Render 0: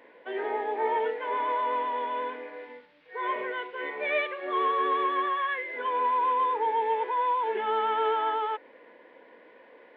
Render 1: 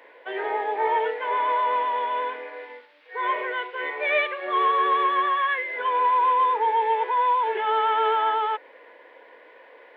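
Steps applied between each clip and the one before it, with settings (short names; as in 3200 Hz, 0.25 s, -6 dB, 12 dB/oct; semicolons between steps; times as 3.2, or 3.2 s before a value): Bessel high-pass 500 Hz, order 4; gain +6 dB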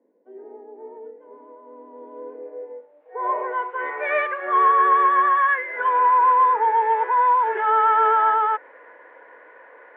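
low-pass sweep 210 Hz -> 1500 Hz, 1.69–4.02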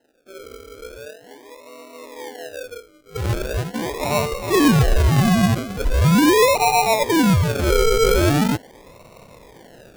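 decimation with a swept rate 38×, swing 60% 0.41 Hz; gain +2 dB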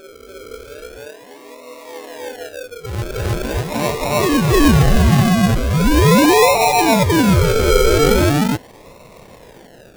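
reverse echo 0.31 s -3.5 dB; gain +2 dB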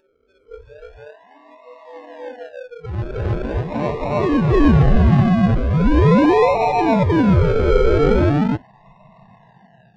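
tape spacing loss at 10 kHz 36 dB; spectral noise reduction 21 dB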